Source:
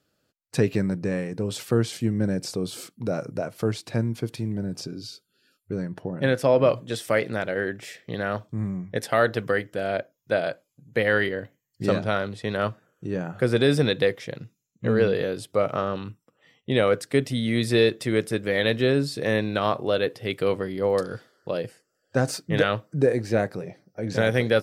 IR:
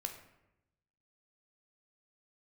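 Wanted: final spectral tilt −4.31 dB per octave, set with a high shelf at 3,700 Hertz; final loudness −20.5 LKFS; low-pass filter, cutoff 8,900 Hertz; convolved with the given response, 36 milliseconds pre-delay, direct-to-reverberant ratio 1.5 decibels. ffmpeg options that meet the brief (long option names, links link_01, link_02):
-filter_complex "[0:a]lowpass=8900,highshelf=frequency=3700:gain=9,asplit=2[link_01][link_02];[1:a]atrim=start_sample=2205,adelay=36[link_03];[link_02][link_03]afir=irnorm=-1:irlink=0,volume=-0.5dB[link_04];[link_01][link_04]amix=inputs=2:normalize=0,volume=1.5dB"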